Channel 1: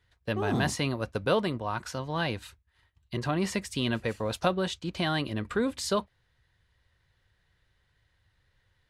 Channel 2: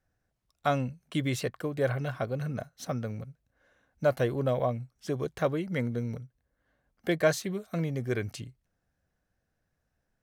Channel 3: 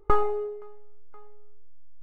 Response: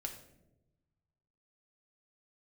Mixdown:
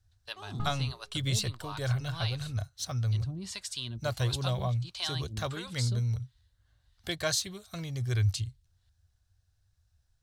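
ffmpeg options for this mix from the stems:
-filter_complex "[0:a]acrossover=split=450[a][b];[a]aeval=exprs='val(0)*(1-1/2+1/2*cos(2*PI*1.5*n/s))':c=same[c];[b]aeval=exprs='val(0)*(1-1/2-1/2*cos(2*PI*1.5*n/s))':c=same[d];[c][d]amix=inputs=2:normalize=0,volume=-4.5dB[e];[1:a]lowshelf=f=120:t=q:w=3:g=8.5,volume=-0.5dB[f];[2:a]adelay=500,volume=-17dB[g];[e][f][g]amix=inputs=3:normalize=0,equalizer=f=125:t=o:w=1:g=4,equalizer=f=250:t=o:w=1:g=-8,equalizer=f=500:t=o:w=1:g=-10,equalizer=f=2k:t=o:w=1:g=-6,equalizer=f=4k:t=o:w=1:g=10,equalizer=f=8k:t=o:w=1:g=6"

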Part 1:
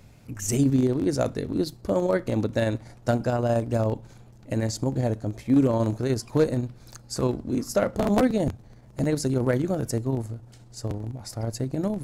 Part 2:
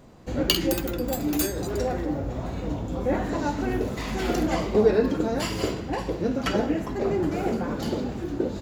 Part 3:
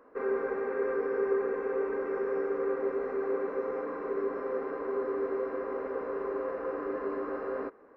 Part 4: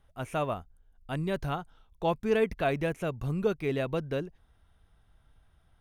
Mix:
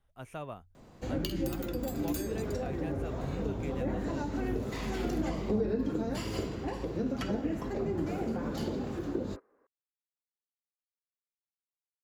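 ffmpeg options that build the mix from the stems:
-filter_complex "[1:a]bandreject=f=60:t=h:w=6,bandreject=f=120:t=h:w=6,bandreject=f=180:t=h:w=6,bandreject=f=240:t=h:w=6,bandreject=f=300:t=h:w=6,bandreject=f=360:t=h:w=6,bandreject=f=420:t=h:w=6,adelay=750,volume=-4dB[a];[2:a]adelay=1700,volume=-13dB[b];[3:a]bandreject=f=46.01:t=h:w=4,bandreject=f=92.02:t=h:w=4,acontrast=56,volume=-15dB[c];[a][b][c]amix=inputs=3:normalize=0,acrossover=split=330[d][e];[e]acompressor=threshold=-37dB:ratio=6[f];[d][f]amix=inputs=2:normalize=0"

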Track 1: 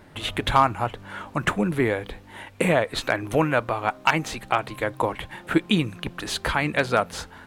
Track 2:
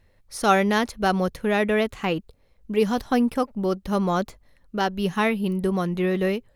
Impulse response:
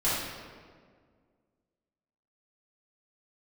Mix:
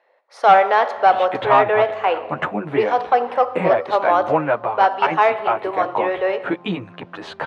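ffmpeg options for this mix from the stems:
-filter_complex "[0:a]asplit=2[a][b];[b]adelay=10.6,afreqshift=-0.6[c];[a][c]amix=inputs=2:normalize=1,adelay=950,volume=-0.5dB[d];[1:a]highpass=f=460:w=0.5412,highpass=f=460:w=1.3066,volume=1.5dB,asplit=2[e][f];[f]volume=-21dB[g];[2:a]atrim=start_sample=2205[h];[g][h]afir=irnorm=-1:irlink=0[i];[d][e][i]amix=inputs=3:normalize=0,equalizer=f=770:t=o:w=1.6:g=10,asoftclip=type=tanh:threshold=-3.5dB,highpass=130,lowpass=3k"

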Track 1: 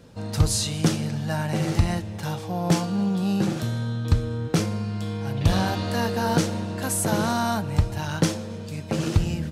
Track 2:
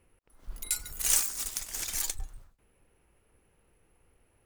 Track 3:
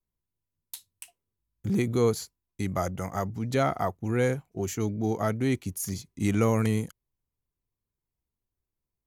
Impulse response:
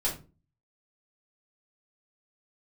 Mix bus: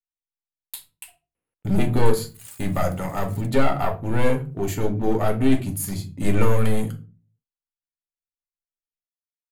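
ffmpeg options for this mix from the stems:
-filter_complex "[1:a]highpass=150,adelay=1350,volume=-16dB[a];[2:a]agate=range=-35dB:threshold=-51dB:ratio=16:detection=peak,aeval=exprs='clip(val(0),-1,0.0531)':c=same,volume=2dB,asplit=2[b][c];[c]volume=-5.5dB[d];[3:a]atrim=start_sample=2205[e];[d][e]afir=irnorm=-1:irlink=0[f];[a][b][f]amix=inputs=3:normalize=0,equalizer=f=5.9k:w=3.5:g=-13,bandreject=f=370:w=12"

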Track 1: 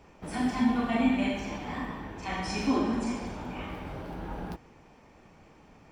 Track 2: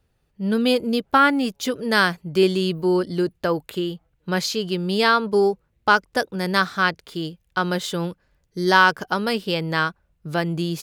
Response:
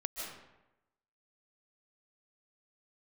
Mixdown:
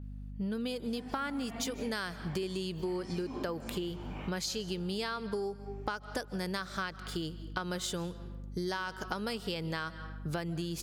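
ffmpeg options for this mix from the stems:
-filter_complex "[0:a]adelay=600,volume=-6dB[a];[1:a]adynamicequalizer=threshold=0.00794:dfrequency=7600:dqfactor=0.89:tfrequency=7600:tqfactor=0.89:attack=5:release=100:ratio=0.375:range=3.5:mode=boostabove:tftype=bell,acompressor=threshold=-20dB:ratio=3,aeval=exprs='val(0)+0.0112*(sin(2*PI*50*n/s)+sin(2*PI*2*50*n/s)/2+sin(2*PI*3*50*n/s)/3+sin(2*PI*4*50*n/s)/4+sin(2*PI*5*50*n/s)/5)':c=same,volume=-3.5dB,asplit=3[b][c][d];[c]volume=-16.5dB[e];[d]apad=whole_len=287468[f];[a][f]sidechaincompress=threshold=-27dB:ratio=8:attack=7.4:release=792[g];[2:a]atrim=start_sample=2205[h];[e][h]afir=irnorm=-1:irlink=0[i];[g][b][i]amix=inputs=3:normalize=0,acompressor=threshold=-33dB:ratio=6"

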